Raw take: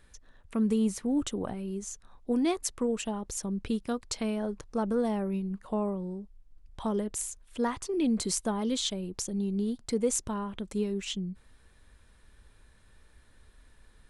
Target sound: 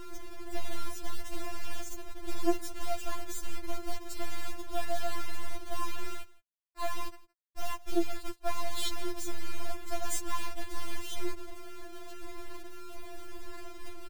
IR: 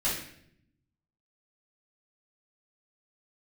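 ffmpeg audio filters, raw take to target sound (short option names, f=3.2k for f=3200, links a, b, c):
-filter_complex "[0:a]afwtdn=0.0178,acontrast=65,asoftclip=type=tanh:threshold=-16dB,alimiter=limit=-22.5dB:level=0:latency=1:release=352,aeval=exprs='val(0)+0.00794*(sin(2*PI*60*n/s)+sin(2*PI*2*60*n/s)/2+sin(2*PI*3*60*n/s)/3+sin(2*PI*4*60*n/s)/4+sin(2*PI*5*60*n/s)/5)':c=same,asplit=3[a][b][c];[a]afade=t=out:st=6.06:d=0.02[d];[b]bandpass=f=910:t=q:w=0.51:csg=0,afade=t=in:st=6.06:d=0.02,afade=t=out:st=8.46:d=0.02[e];[c]afade=t=in:st=8.46:d=0.02[f];[d][e][f]amix=inputs=3:normalize=0,acompressor=threshold=-29dB:ratio=16,acrusher=bits=4:dc=4:mix=0:aa=0.000001,aecho=1:1:164:0.0794,afftfilt=real='re*4*eq(mod(b,16),0)':imag='im*4*eq(mod(b,16),0)':win_size=2048:overlap=0.75,volume=6dB"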